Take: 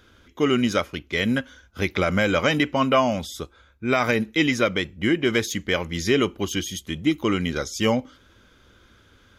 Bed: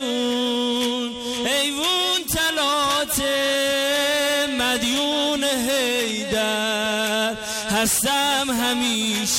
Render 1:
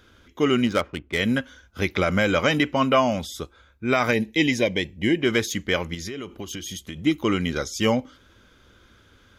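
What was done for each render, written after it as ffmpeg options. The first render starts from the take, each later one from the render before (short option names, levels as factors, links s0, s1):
-filter_complex "[0:a]asplit=3[s0][s1][s2];[s0]afade=t=out:st=0.65:d=0.02[s3];[s1]adynamicsmooth=sensitivity=3:basefreq=1600,afade=t=in:st=0.65:d=0.02,afade=t=out:st=1.17:d=0.02[s4];[s2]afade=t=in:st=1.17:d=0.02[s5];[s3][s4][s5]amix=inputs=3:normalize=0,asettb=1/sr,asplit=3[s6][s7][s8];[s6]atrim=end=4.134[s9];[s7]atrim=start=4.13:end=5.2,asetpts=PTS-STARTPTS,afade=t=in:d=0.004:c=qsin,afade=t=out:st=1.066:d=0.004:c=qsin,asuperstop=centerf=1300:order=4:qfactor=1.9[s10];[s8]atrim=start=5.196[s11];[s9][s10]acrossfade=d=0.004:c1=hsin:c2=qsin[s12];[s12][s11]acrossfade=d=0.004:c1=qsin:c2=hsin,asettb=1/sr,asplit=3[s13][s14][s15];[s13]atrim=end=5.944[s16];[s14]atrim=start=5.94:end=7.04,asetpts=PTS-STARTPTS,afade=t=in:d=0.004:c=qsin,afade=t=out:st=1.096:d=0.004:c=qsin,acompressor=threshold=0.0355:ratio=16:attack=3.2:release=140:knee=1:detection=peak[s17];[s15]atrim=start=7.036[s18];[s16][s17]acrossfade=d=0.004:c1=hsin:c2=qsin[s19];[s19][s18]acrossfade=d=0.004:c1=qsin:c2=hsin"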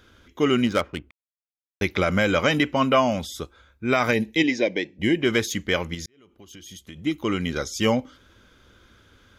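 -filter_complex "[0:a]asplit=3[s0][s1][s2];[s0]afade=t=out:st=4.42:d=0.02[s3];[s1]highpass=270,equalizer=f=310:t=q:w=4:g=5,equalizer=f=1100:t=q:w=4:g=-6,equalizer=f=3100:t=q:w=4:g=-7,lowpass=f=5800:w=0.5412,lowpass=f=5800:w=1.3066,afade=t=in:st=4.42:d=0.02,afade=t=out:st=4.98:d=0.02[s4];[s2]afade=t=in:st=4.98:d=0.02[s5];[s3][s4][s5]amix=inputs=3:normalize=0,asplit=4[s6][s7][s8][s9];[s6]atrim=end=1.11,asetpts=PTS-STARTPTS,afade=t=out:st=1.106:d=0.004:c=hsin[s10];[s7]atrim=start=1.11:end=1.81,asetpts=PTS-STARTPTS,volume=0[s11];[s8]atrim=start=1.81:end=6.06,asetpts=PTS-STARTPTS,afade=t=in:d=0.004:c=hsin,afade=t=out:st=4.246:d=0.004:c=hsin[s12];[s9]atrim=start=6.06,asetpts=PTS-STARTPTS,afade=t=in:d=1.64[s13];[s10][s11][s12][s13]concat=n=4:v=0:a=1"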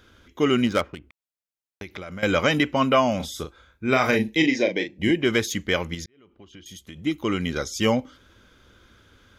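-filter_complex "[0:a]asettb=1/sr,asplit=3[s0][s1][s2];[s0]atrim=end=0.944[s3];[s1]atrim=start=0.94:end=2.23,asetpts=PTS-STARTPTS,afade=t=in:d=0.004:c=qsin,afade=t=out:st=1.286:d=0.004:c=qsin,acompressor=threshold=0.02:ratio=5:attack=3.2:release=140:knee=1:detection=peak[s4];[s2]atrim=start=2.226[s5];[s3][s4]acrossfade=d=0.004:c1=hsin:c2=qsin[s6];[s6][s5]acrossfade=d=0.004:c1=qsin:c2=hsin,asettb=1/sr,asplit=3[s7][s8][s9];[s7]atrim=end=3.164[s10];[s8]atrim=start=3.16:end=5.11,asetpts=PTS-STARTPTS,afade=t=in:d=0.004:c=qsin,afade=t=out:st=1.946:d=0.004:c=qsin,asplit=2[s11][s12];[s12]adelay=38,volume=0.447[s13];[s11][s13]amix=inputs=2:normalize=0,atrim=end_sample=85995[s14];[s9]atrim=start=5.106[s15];[s10][s14]acrossfade=d=0.004:c1=hsin:c2=qsin[s16];[s16][s15]acrossfade=d=0.004:c1=qsin:c2=hsin,asettb=1/sr,asplit=3[s17][s18][s19];[s17]atrim=end=6.044[s20];[s18]atrim=start=6.04:end=6.66,asetpts=PTS-STARTPTS,afade=t=in:d=0.004:c=qsin,afade=t=out:st=0.616:d=0.004:c=qsin,lowpass=3300[s21];[s19]atrim=start=6.656[s22];[s20][s21]acrossfade=d=0.004:c1=hsin:c2=qsin[s23];[s23][s22]acrossfade=d=0.004:c1=qsin:c2=hsin"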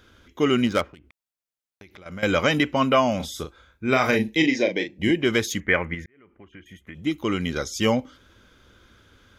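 -filter_complex "[0:a]asettb=1/sr,asplit=3[s0][s1][s2];[s0]atrim=end=0.894[s3];[s1]atrim=start=0.89:end=2.06,asetpts=PTS-STARTPTS,afade=t=in:d=0.004:c=qsin,afade=t=out:st=1.166:d=0.004:c=qsin,acompressor=threshold=0.00447:ratio=2.5:attack=3.2:release=140:knee=1:detection=peak[s4];[s2]atrim=start=2.056[s5];[s3][s4]acrossfade=d=0.004:c1=hsin:c2=qsin[s6];[s6][s5]acrossfade=d=0.004:c1=qsin:c2=hsin,asettb=1/sr,asplit=3[s7][s8][s9];[s7]atrim=end=5.604[s10];[s8]atrim=start=5.6:end=6.95,asetpts=PTS-STARTPTS,afade=t=in:d=0.004:c=qsin,afade=t=out:st=1.346:d=0.004:c=qsin,highshelf=f=3000:t=q:w=3:g=-14[s11];[s9]atrim=start=6.946[s12];[s10][s11]acrossfade=d=0.004:c1=hsin:c2=qsin[s13];[s13][s12]acrossfade=d=0.004:c1=qsin:c2=hsin"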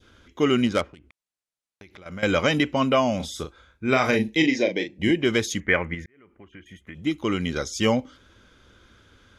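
-af "lowpass=f=11000:w=0.5412,lowpass=f=11000:w=1.3066,adynamicequalizer=threshold=0.02:dfrequency=1400:dqfactor=0.99:tfrequency=1400:tqfactor=0.99:attack=5:release=100:ratio=0.375:range=2.5:mode=cutabove:tftype=bell"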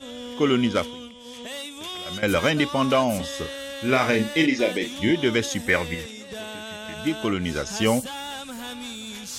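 -filter_complex "[1:a]volume=0.2[s0];[0:a][s0]amix=inputs=2:normalize=0"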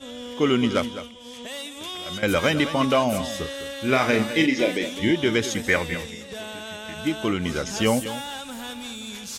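-af "aecho=1:1:207:0.237"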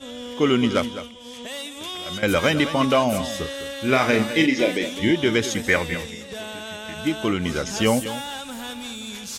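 -af "volume=1.19"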